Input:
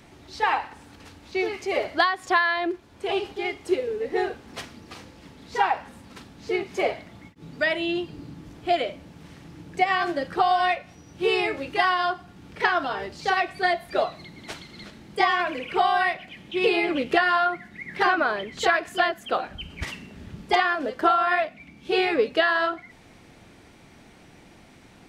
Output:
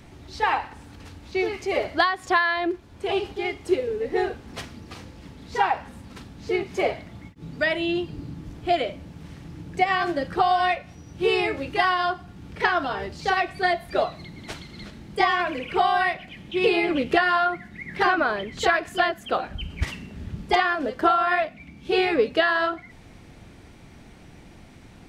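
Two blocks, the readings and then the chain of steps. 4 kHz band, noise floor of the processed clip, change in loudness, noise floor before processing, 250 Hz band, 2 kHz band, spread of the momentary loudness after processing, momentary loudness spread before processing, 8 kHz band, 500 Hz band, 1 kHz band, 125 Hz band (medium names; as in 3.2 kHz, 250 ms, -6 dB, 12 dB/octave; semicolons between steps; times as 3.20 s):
0.0 dB, -48 dBFS, +0.5 dB, -51 dBFS, +2.0 dB, 0.0 dB, 19 LU, 18 LU, no reading, +1.0 dB, +0.5 dB, +6.5 dB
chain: bass shelf 150 Hz +10.5 dB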